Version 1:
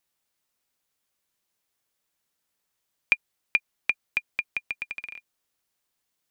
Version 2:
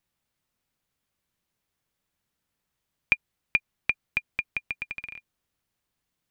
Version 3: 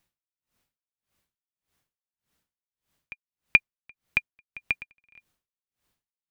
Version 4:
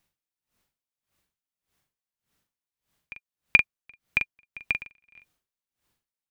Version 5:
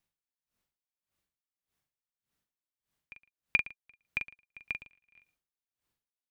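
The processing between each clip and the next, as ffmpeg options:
-af "bass=f=250:g=10,treble=f=4k:g=-5"
-af "aeval=exprs='val(0)*pow(10,-39*(0.5-0.5*cos(2*PI*1.7*n/s))/20)':c=same,volume=6.5dB"
-filter_complex "[0:a]asplit=2[a][b];[b]adelay=42,volume=-6dB[c];[a][c]amix=inputs=2:normalize=0"
-af "aecho=1:1:113:0.112,volume=-9dB"

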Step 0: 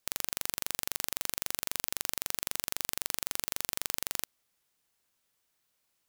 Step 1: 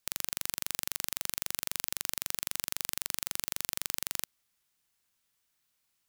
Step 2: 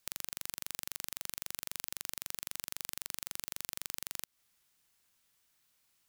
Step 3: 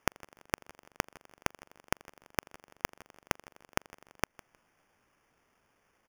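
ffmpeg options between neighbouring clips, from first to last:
-af "equalizer=f=510:t=o:w=1.7:g=-6"
-af "acompressor=threshold=-36dB:ratio=6,volume=3.5dB"
-af "acrusher=samples=11:mix=1:aa=0.000001,aecho=1:1:156|312:0.0794|0.0191,volume=1.5dB"

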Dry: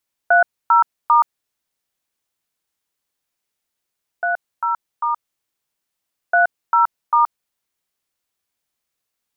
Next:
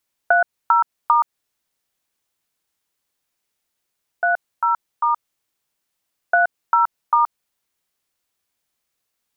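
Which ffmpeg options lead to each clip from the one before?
-af "acompressor=threshold=-15dB:ratio=6,volume=2.5dB"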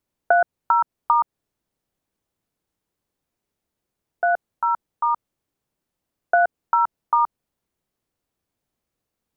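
-af "tiltshelf=f=820:g=8.5"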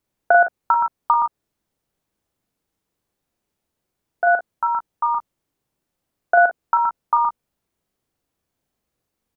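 -af "aecho=1:1:40|55:0.531|0.237,volume=1.5dB"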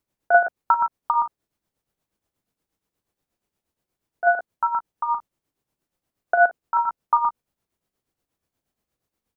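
-af "tremolo=f=8.4:d=0.65"

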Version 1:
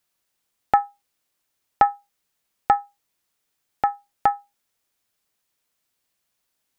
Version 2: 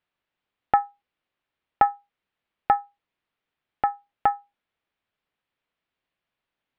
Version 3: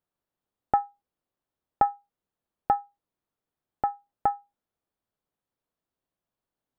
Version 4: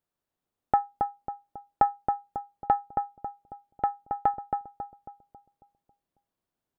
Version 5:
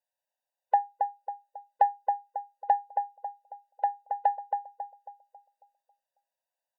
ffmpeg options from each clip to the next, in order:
-af "lowpass=f=3.3k:w=0.5412,lowpass=f=3.3k:w=1.3066,volume=-2dB"
-af "equalizer=f=2.4k:t=o:w=1.7:g=-14.5"
-filter_complex "[0:a]asplit=2[a][b];[b]adelay=273,lowpass=f=970:p=1,volume=-3dB,asplit=2[c][d];[d]adelay=273,lowpass=f=970:p=1,volume=0.52,asplit=2[e][f];[f]adelay=273,lowpass=f=970:p=1,volume=0.52,asplit=2[g][h];[h]adelay=273,lowpass=f=970:p=1,volume=0.52,asplit=2[i][j];[j]adelay=273,lowpass=f=970:p=1,volume=0.52,asplit=2[k][l];[l]adelay=273,lowpass=f=970:p=1,volume=0.52,asplit=2[m][n];[n]adelay=273,lowpass=f=970:p=1,volume=0.52[o];[a][c][e][g][i][k][m][o]amix=inputs=8:normalize=0"
-af "afftfilt=real='re*eq(mod(floor(b*sr/1024/500),2),1)':imag='im*eq(mod(floor(b*sr/1024/500),2),1)':win_size=1024:overlap=0.75"

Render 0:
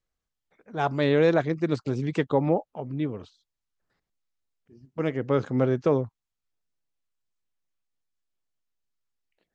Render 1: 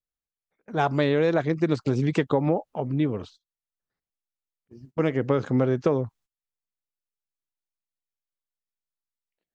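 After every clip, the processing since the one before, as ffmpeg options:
-af "agate=range=-19dB:threshold=-54dB:ratio=16:detection=peak,acompressor=threshold=-24dB:ratio=6,volume=6dB"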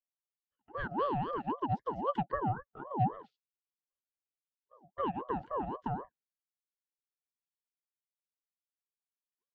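-filter_complex "[0:a]asplit=3[a][b][c];[a]bandpass=f=300:t=q:w=8,volume=0dB[d];[b]bandpass=f=870:t=q:w=8,volume=-6dB[e];[c]bandpass=f=2.24k:t=q:w=8,volume=-9dB[f];[d][e][f]amix=inputs=3:normalize=0,aeval=exprs='val(0)*sin(2*PI*650*n/s+650*0.35/3.8*sin(2*PI*3.8*n/s))':c=same"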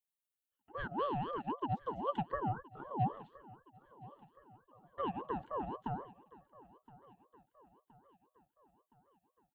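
-filter_complex "[0:a]acrossover=split=1600[a][b];[b]aexciter=amount=1.1:drive=5:freq=2.8k[c];[a][c]amix=inputs=2:normalize=0,aecho=1:1:1019|2038|3057|4076:0.1|0.054|0.0292|0.0157,volume=-3.5dB"

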